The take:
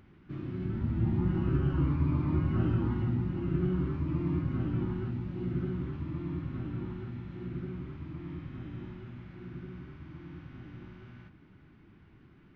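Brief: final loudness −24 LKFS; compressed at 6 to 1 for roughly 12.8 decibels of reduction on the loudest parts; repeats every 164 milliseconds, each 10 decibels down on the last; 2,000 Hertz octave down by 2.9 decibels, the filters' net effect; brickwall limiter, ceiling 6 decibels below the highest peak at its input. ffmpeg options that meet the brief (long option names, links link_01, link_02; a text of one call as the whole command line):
ffmpeg -i in.wav -af "equalizer=frequency=2000:width_type=o:gain=-4,acompressor=threshold=-38dB:ratio=6,alimiter=level_in=11dB:limit=-24dB:level=0:latency=1,volume=-11dB,aecho=1:1:164|328|492|656:0.316|0.101|0.0324|0.0104,volume=19.5dB" out.wav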